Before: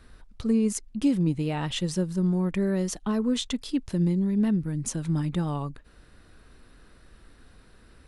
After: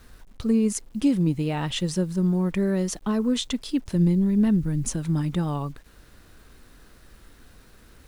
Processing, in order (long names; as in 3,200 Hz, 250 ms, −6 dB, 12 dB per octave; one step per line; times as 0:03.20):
0:03.95–0:04.96: low-shelf EQ 82 Hz +11 dB
bit reduction 10 bits
level +2 dB